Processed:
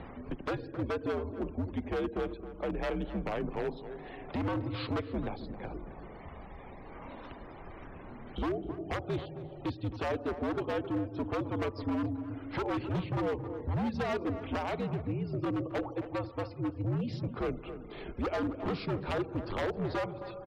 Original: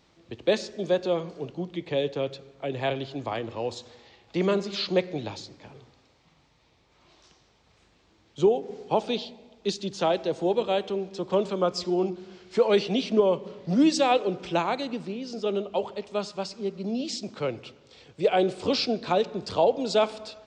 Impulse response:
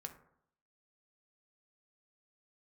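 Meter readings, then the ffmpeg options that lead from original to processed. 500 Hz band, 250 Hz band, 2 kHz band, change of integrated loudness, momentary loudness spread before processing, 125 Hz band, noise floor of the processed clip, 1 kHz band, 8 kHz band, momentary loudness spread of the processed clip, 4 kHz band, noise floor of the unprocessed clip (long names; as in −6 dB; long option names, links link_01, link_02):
−10.5 dB, −5.0 dB, −4.5 dB, −8.0 dB, 11 LU, +1.5 dB, −47 dBFS, −8.0 dB, below −15 dB, 13 LU, −14.5 dB, −63 dBFS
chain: -filter_complex "[0:a]lowpass=1700,acompressor=mode=upward:threshold=-30dB:ratio=2.5,aeval=exprs='0.299*(cos(1*acos(clip(val(0)/0.299,-1,1)))-cos(1*PI/2))+0.0422*(cos(2*acos(clip(val(0)/0.299,-1,1)))-cos(2*PI/2))+0.00299*(cos(3*acos(clip(val(0)/0.299,-1,1)))-cos(3*PI/2))':channel_layout=same,acompressor=threshold=-27dB:ratio=3,aeval=exprs='0.0501*(abs(mod(val(0)/0.0501+3,4)-2)-1)':channel_layout=same,acrusher=bits=8:mix=0:aa=0.000001,afftfilt=real='re*gte(hypot(re,im),0.00282)':imag='im*gte(hypot(re,im),0.00282)':win_size=1024:overlap=0.75,afreqshift=-86,asoftclip=type=hard:threshold=-27dB,asplit=2[link_01][link_02];[link_02]adelay=267,lowpass=frequency=1300:poles=1,volume=-10dB,asplit=2[link_03][link_04];[link_04]adelay=267,lowpass=frequency=1300:poles=1,volume=0.15[link_05];[link_03][link_05]amix=inputs=2:normalize=0[link_06];[link_01][link_06]amix=inputs=2:normalize=0"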